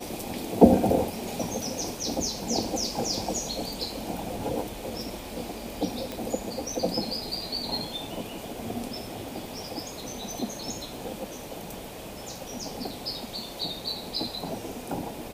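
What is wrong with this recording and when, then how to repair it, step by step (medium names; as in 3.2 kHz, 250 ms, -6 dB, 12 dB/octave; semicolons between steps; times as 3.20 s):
6.12 s: pop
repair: de-click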